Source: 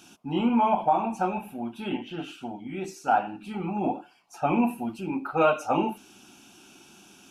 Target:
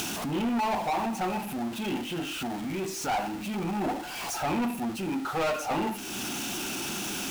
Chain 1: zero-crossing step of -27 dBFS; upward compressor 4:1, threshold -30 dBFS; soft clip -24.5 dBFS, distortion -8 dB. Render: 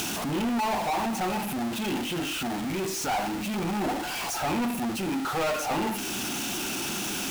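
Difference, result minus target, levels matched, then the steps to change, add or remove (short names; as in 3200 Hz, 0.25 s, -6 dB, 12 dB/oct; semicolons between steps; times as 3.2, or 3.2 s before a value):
zero-crossing step: distortion +6 dB
change: zero-crossing step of -34.5 dBFS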